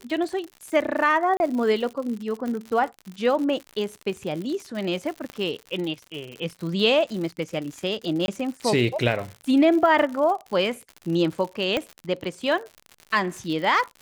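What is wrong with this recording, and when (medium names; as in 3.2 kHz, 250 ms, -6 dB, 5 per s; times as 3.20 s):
crackle 98 per s -31 dBFS
1.37–1.40 s: dropout 31 ms
2.48 s: pop -20 dBFS
5.30 s: pop -20 dBFS
8.26–8.28 s: dropout 21 ms
11.77 s: pop -11 dBFS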